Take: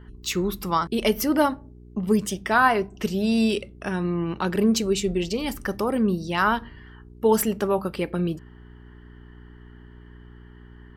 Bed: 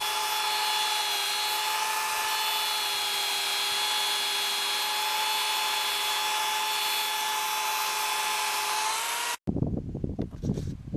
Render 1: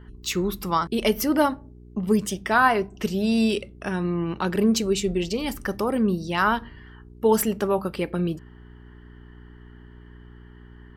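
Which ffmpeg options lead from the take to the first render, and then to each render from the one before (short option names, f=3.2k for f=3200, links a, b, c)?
-af anull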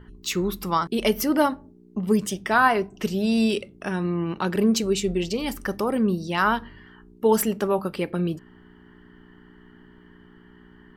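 -af "bandreject=f=60:t=h:w=4,bandreject=f=120:t=h:w=4"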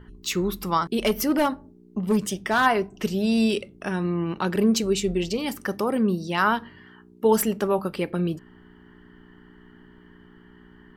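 -filter_complex "[0:a]asplit=3[a][b][c];[a]afade=t=out:st=1.01:d=0.02[d];[b]asoftclip=type=hard:threshold=-15.5dB,afade=t=in:st=1.01:d=0.02,afade=t=out:st=2.65:d=0.02[e];[c]afade=t=in:st=2.65:d=0.02[f];[d][e][f]amix=inputs=3:normalize=0,asettb=1/sr,asplit=3[g][h][i];[g]atrim=end=5.384[j];[h]atrim=start=5.38:end=7.25,asetpts=PTS-STARTPTS,afade=t=in:d=0.004:c=qsin,afade=t=out:st=1.866:d=0.004:c=qsin,highpass=100[k];[i]atrim=start=7.246[l];[j][k]acrossfade=d=0.004:c1=hsin:c2=qsin[m];[m][l]acrossfade=d=0.004:c1=qsin:c2=hsin"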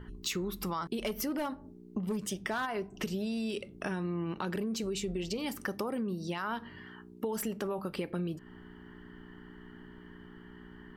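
-af "alimiter=limit=-17.5dB:level=0:latency=1:release=24,acompressor=threshold=-32dB:ratio=6"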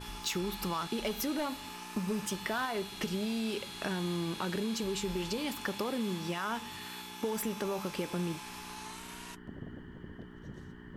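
-filter_complex "[1:a]volume=-17.5dB[a];[0:a][a]amix=inputs=2:normalize=0"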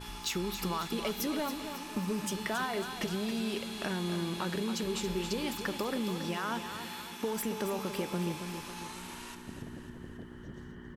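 -af "aecho=1:1:275|550|825|1100|1375|1650:0.355|0.181|0.0923|0.0471|0.024|0.0122"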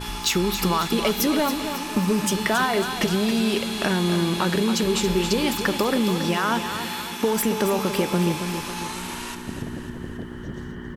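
-af "volume=12dB"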